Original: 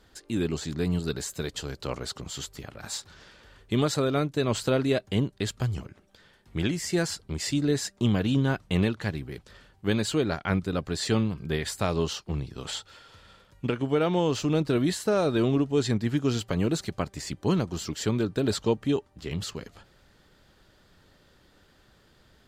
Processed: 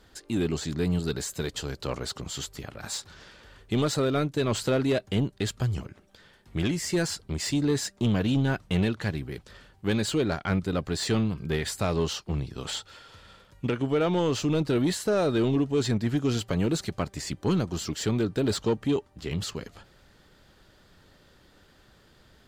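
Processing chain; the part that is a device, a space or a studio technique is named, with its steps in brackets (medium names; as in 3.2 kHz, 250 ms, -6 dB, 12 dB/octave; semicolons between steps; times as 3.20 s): saturation between pre-emphasis and de-emphasis (treble shelf 2.8 kHz +8.5 dB; saturation -19 dBFS, distortion -16 dB; treble shelf 2.8 kHz -8.5 dB); trim +2 dB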